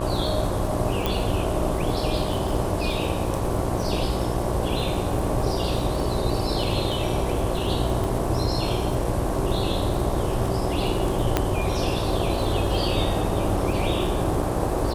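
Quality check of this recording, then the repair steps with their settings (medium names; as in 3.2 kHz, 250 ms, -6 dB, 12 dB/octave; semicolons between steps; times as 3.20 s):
buzz 60 Hz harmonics 19 -29 dBFS
crackle 49 per s -30 dBFS
1.06 s: pop
8.04 s: pop
11.37 s: pop -5 dBFS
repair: de-click; de-hum 60 Hz, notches 19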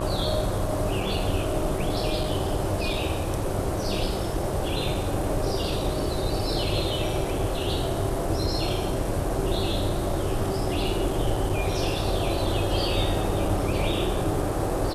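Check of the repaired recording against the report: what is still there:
1.06 s: pop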